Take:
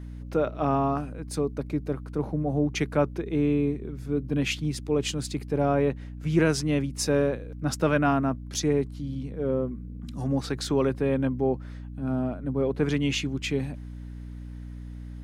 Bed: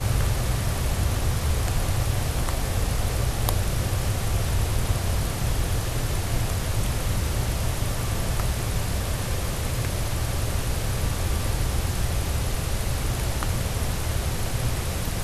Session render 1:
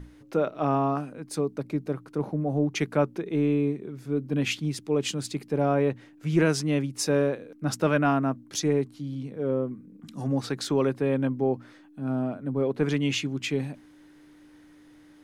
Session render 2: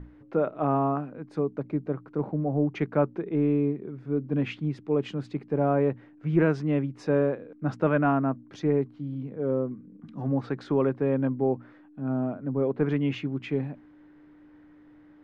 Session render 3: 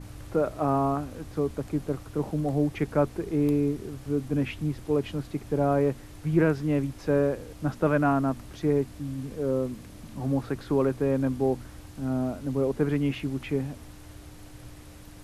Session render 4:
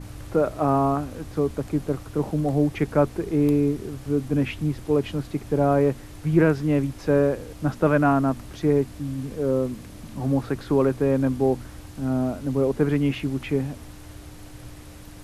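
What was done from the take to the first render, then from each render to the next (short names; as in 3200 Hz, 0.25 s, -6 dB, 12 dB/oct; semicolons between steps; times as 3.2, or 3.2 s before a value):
notches 60/120/180/240 Hz
LPF 1700 Hz 12 dB/oct
add bed -20.5 dB
gain +4 dB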